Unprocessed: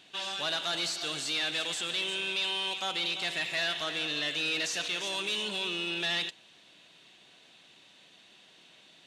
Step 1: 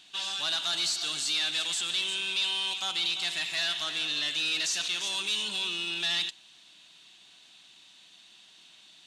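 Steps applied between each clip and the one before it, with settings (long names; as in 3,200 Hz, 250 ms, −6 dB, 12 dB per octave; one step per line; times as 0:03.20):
octave-band graphic EQ 125/250/500/2,000/4,000/8,000 Hz −7/−3/−12/−4/+3/+4 dB
level +1.5 dB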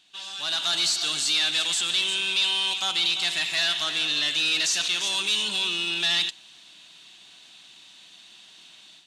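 automatic gain control gain up to 11 dB
level −5.5 dB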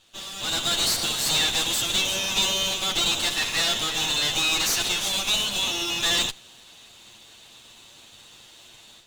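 lower of the sound and its delayed copy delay 8.7 ms
level +2.5 dB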